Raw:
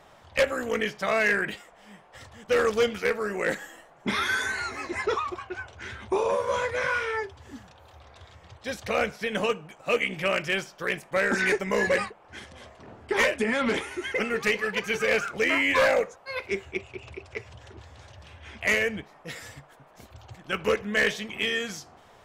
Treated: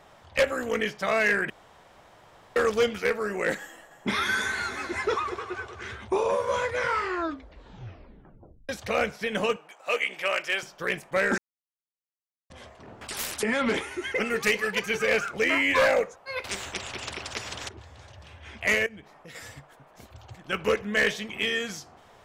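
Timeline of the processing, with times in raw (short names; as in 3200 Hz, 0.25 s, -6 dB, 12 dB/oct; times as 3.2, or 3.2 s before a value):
1.5–2.56 room tone
3.6–5.99 multi-head echo 0.103 s, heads second and third, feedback 50%, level -15 dB
6.77 tape stop 1.92 s
9.56–10.63 HPF 540 Hz
11.38–12.5 mute
13.01–13.43 spectral compressor 10:1
14.26–14.86 high shelf 5600 Hz +8.5 dB
16.44–17.69 spectral compressor 4:1
18.86–19.35 compressor 4:1, threshold -43 dBFS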